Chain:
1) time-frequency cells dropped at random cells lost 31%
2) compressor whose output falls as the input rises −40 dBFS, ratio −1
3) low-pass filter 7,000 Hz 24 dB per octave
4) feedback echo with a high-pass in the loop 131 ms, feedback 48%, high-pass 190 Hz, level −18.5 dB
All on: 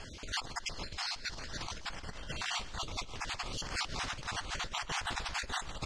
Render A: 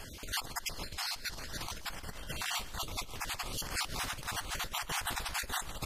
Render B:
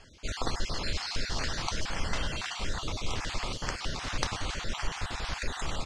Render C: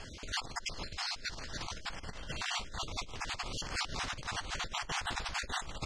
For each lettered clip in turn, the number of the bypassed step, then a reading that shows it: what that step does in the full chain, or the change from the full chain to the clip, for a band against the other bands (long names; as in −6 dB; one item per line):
3, 8 kHz band +4.0 dB
2, change in crest factor +2.0 dB
4, echo-to-direct ratio −17.5 dB to none audible